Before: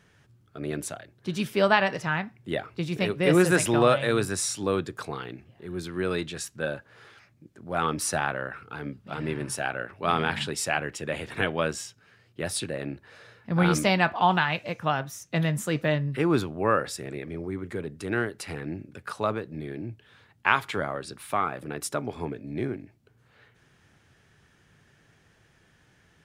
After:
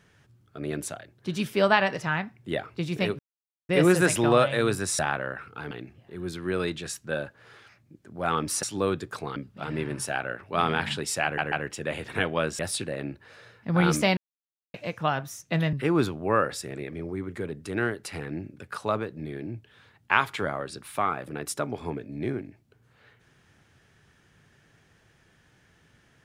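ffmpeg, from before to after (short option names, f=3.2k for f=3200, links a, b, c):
-filter_complex "[0:a]asplit=12[a][b][c][d][e][f][g][h][i][j][k][l];[a]atrim=end=3.19,asetpts=PTS-STARTPTS,afade=t=out:st=3.186:d=0.004:c=hsin,apad=pad_dur=0.5[m];[b]atrim=start=3.19:end=4.492,asetpts=PTS-STARTPTS,afade=t=in:d=0.004:c=hsin[n];[c]atrim=start=8.138:end=8.862[o];[d]atrim=start=5.218:end=8.142[p];[e]atrim=start=4.488:end=5.222[q];[f]atrim=start=8.858:end=10.882[r];[g]atrim=start=10.738:end=10.882[s];[h]atrim=start=10.738:end=11.812[t];[i]atrim=start=12.408:end=13.99,asetpts=PTS-STARTPTS,afade=t=out:st=1.578:d=0.004:c=hsin[u];[j]atrim=start=13.99:end=14.56,asetpts=PTS-STARTPTS,volume=0[v];[k]atrim=start=14.56:end=15.552,asetpts=PTS-STARTPTS,afade=t=in:d=0.004:c=hsin[w];[l]atrim=start=16.078[x];[m][n]concat=n=2:v=0:a=1[y];[y][o]acrossfade=d=0.004:c1=hsin:c2=hsin[z];[z][p]acrossfade=d=0.004:c1=hsin:c2=hsin[aa];[aa][q]acrossfade=d=0.004:c1=hsin:c2=hsin[ab];[ab][r]acrossfade=d=0.004:c1=hsin:c2=hsin[ac];[ac][s]acrossfade=d=0.004:c1=hsin:c2=hsin[ad];[ad][t]acrossfade=d=0.004:c1=hsin:c2=hsin[ae];[u][v][w]concat=n=3:v=0:a=1[af];[ae][af]acrossfade=d=0.004:c1=hsin:c2=hsin[ag];[ag][x]acrossfade=d=0.004:c1=hsin:c2=hsin"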